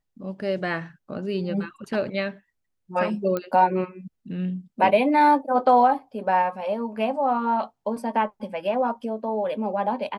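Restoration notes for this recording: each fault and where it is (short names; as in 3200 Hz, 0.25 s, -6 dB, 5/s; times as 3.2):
3.37 pop -14 dBFS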